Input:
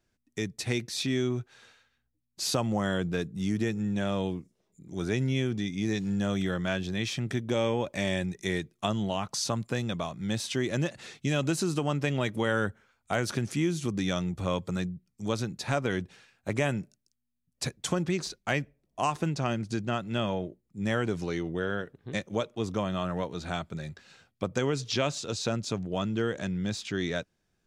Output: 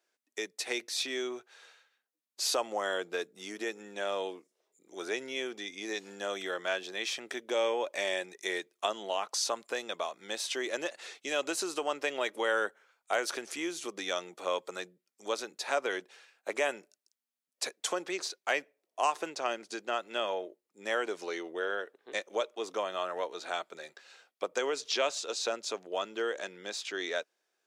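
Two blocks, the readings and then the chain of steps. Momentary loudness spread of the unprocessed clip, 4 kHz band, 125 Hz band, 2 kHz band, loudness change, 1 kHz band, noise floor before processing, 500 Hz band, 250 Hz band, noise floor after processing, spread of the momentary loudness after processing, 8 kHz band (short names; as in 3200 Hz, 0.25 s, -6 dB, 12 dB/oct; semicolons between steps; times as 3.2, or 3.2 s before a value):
7 LU, 0.0 dB, under -30 dB, 0.0 dB, -3.5 dB, 0.0 dB, -78 dBFS, -1.5 dB, -13.5 dB, under -85 dBFS, 8 LU, 0.0 dB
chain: HPF 410 Hz 24 dB/oct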